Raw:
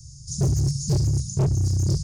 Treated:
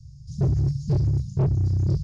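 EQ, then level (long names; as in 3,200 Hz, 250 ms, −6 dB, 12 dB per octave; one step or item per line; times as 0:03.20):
high-frequency loss of the air 470 metres
parametric band 6,000 Hz +8 dB 1.2 octaves
0.0 dB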